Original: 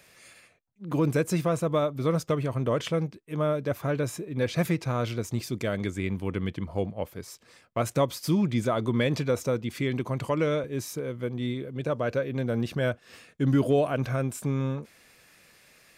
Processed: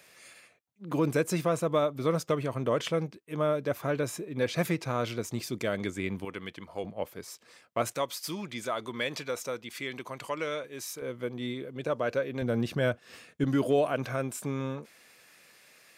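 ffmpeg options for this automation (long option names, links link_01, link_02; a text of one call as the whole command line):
ffmpeg -i in.wav -af "asetnsamples=nb_out_samples=441:pad=0,asendcmd='6.25 highpass f 860;6.84 highpass f 310;7.93 highpass f 1100;11.02 highpass f 330;12.42 highpass f 100;13.44 highpass f 310',highpass=frequency=230:poles=1" out.wav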